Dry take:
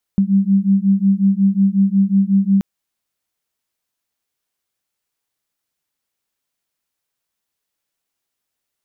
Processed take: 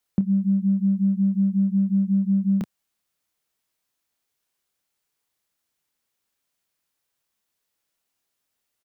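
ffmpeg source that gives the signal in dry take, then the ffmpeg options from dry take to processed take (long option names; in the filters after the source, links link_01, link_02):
-f lavfi -i "aevalsrc='0.188*(sin(2*PI*193*t)+sin(2*PI*198.5*t))':duration=2.43:sample_rate=44100"
-filter_complex "[0:a]acrossover=split=100[link_01][link_02];[link_01]asoftclip=type=hard:threshold=-37.5dB[link_03];[link_02]asplit=2[link_04][link_05];[link_05]adelay=28,volume=-8dB[link_06];[link_04][link_06]amix=inputs=2:normalize=0[link_07];[link_03][link_07]amix=inputs=2:normalize=0,acompressor=threshold=-18dB:ratio=4"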